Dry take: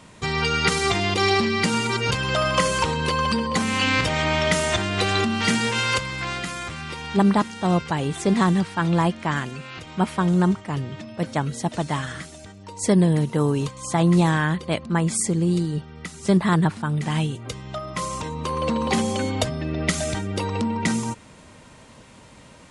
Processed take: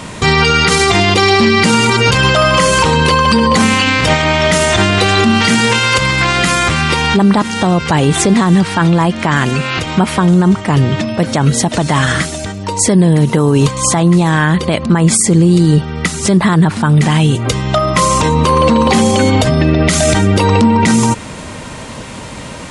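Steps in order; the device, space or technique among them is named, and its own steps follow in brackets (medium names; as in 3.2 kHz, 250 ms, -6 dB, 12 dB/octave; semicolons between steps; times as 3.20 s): loud club master (compression 2:1, threshold -25 dBFS, peak gain reduction 7 dB; hard clipper -12 dBFS, distortion -56 dB; loudness maximiser +21 dB); trim -1 dB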